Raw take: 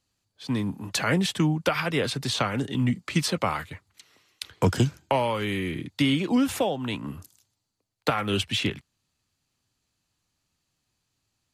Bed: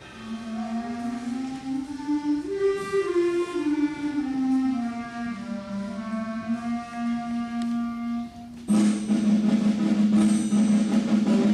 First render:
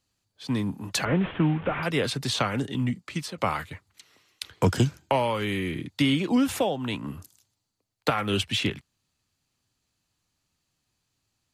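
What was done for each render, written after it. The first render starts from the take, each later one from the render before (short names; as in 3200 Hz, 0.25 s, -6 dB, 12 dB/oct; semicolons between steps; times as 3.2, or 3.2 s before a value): 1.05–1.83 delta modulation 16 kbps, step -33.5 dBFS; 2.56–3.38 fade out, to -12 dB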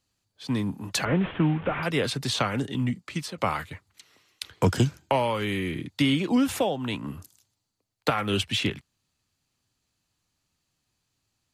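nothing audible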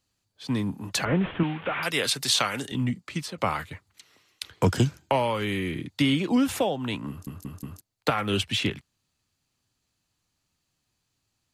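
1.43–2.72 tilt +3 dB/oct; 7.09 stutter in place 0.18 s, 4 plays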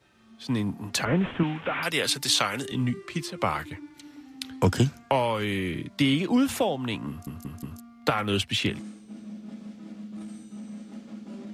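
add bed -19.5 dB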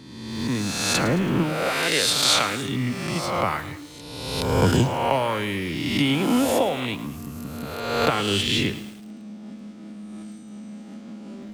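spectral swells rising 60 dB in 1.36 s; lo-fi delay 0.109 s, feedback 55%, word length 6-bit, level -14 dB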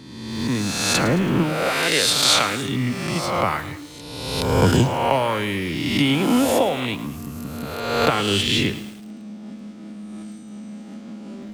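gain +2.5 dB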